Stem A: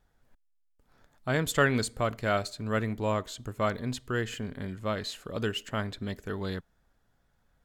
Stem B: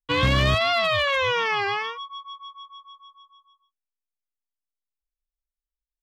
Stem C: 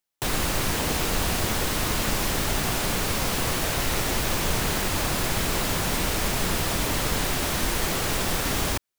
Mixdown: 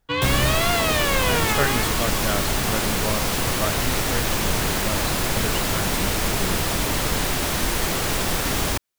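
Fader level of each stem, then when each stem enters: 0.0, -1.5, +2.5 dB; 0.00, 0.00, 0.00 s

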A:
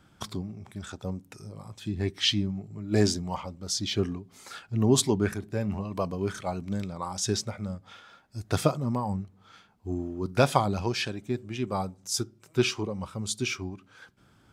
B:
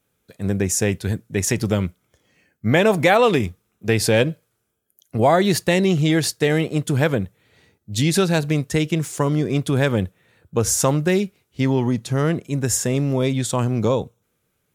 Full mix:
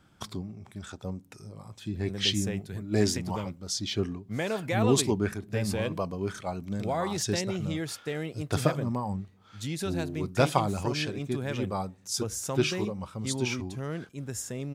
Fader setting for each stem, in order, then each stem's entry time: -2.0, -15.0 dB; 0.00, 1.65 s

